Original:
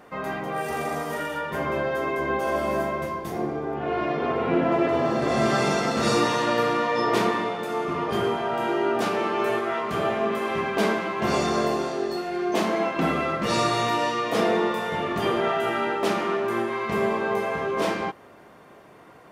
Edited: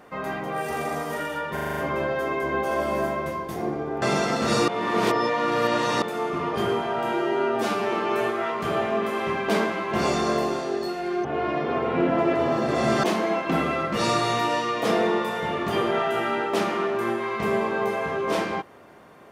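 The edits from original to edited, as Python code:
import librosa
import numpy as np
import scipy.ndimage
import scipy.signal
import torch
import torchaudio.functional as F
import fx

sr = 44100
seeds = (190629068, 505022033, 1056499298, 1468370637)

y = fx.edit(x, sr, fx.stutter(start_s=1.53, slice_s=0.04, count=7),
    fx.move(start_s=3.78, length_s=1.79, to_s=12.53),
    fx.reverse_span(start_s=6.23, length_s=1.34),
    fx.stretch_span(start_s=8.68, length_s=0.53, factor=1.5), tone=tone)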